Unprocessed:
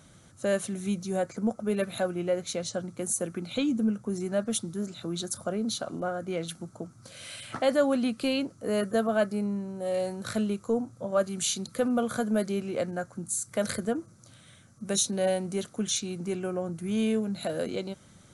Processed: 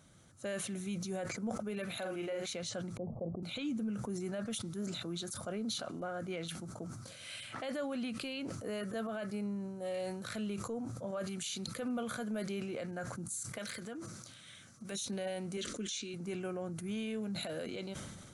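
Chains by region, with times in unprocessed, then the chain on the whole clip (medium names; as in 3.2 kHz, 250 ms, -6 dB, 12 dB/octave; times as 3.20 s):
1.97–2.46 s: bass shelf 140 Hz -10.5 dB + doubling 48 ms -4.5 dB
2.97–3.43 s: steep low-pass 970 Hz 72 dB/octave + comb 1.6 ms, depth 44%
13.58–14.92 s: peaking EQ 800 Hz -9.5 dB 2.6 oct + compression 16:1, threshold -39 dBFS + overdrive pedal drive 20 dB, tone 3.5 kHz, clips at -19 dBFS
15.57–16.14 s: low-pass 8.6 kHz 24 dB/octave + static phaser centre 330 Hz, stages 4
whole clip: dynamic bell 2.5 kHz, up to +7 dB, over -49 dBFS, Q 0.96; peak limiter -23.5 dBFS; decay stretcher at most 34 dB/s; trim -7.5 dB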